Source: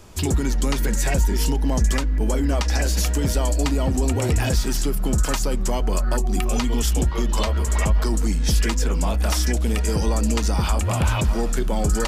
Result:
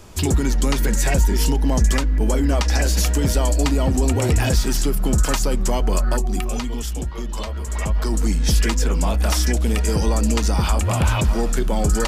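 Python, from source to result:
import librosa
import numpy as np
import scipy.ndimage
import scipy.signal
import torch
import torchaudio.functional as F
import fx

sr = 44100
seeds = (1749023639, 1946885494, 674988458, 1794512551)

y = fx.gain(x, sr, db=fx.line((6.04, 2.5), (6.87, -6.0), (7.61, -6.0), (8.25, 2.0)))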